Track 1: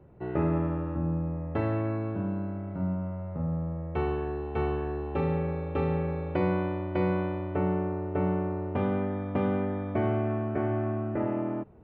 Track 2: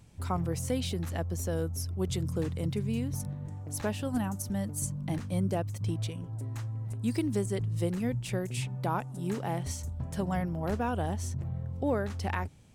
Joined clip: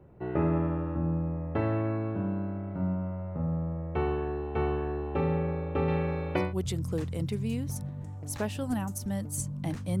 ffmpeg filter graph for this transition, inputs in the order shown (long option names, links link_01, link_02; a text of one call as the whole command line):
ffmpeg -i cue0.wav -i cue1.wav -filter_complex "[0:a]asettb=1/sr,asplit=3[link_01][link_02][link_03];[link_01]atrim=end=5.884[link_04];[link_02]atrim=start=5.88:end=6.54,asetpts=PTS-STARTPTS,afade=type=in:duration=0.004:curve=qsin,afade=type=out:start_time=0.656:duration=0.004:curve=qsin,highshelf=frequency=2200:gain=11.5[link_05];[link_03]atrim=start=6.536[link_06];[link_04][link_05]acrossfade=duration=0.004:curve1=hsin:curve2=qsin[link_07];[link_07][link_06]acrossfade=duration=0.004:curve1=qsin:curve2=hsin,apad=whole_dur=10,atrim=end=10,atrim=end=6.54,asetpts=PTS-STARTPTS[link_08];[1:a]atrim=start=1.8:end=5.44,asetpts=PTS-STARTPTS[link_09];[link_08][link_09]acrossfade=duration=0.18:curve1=tri:curve2=tri" out.wav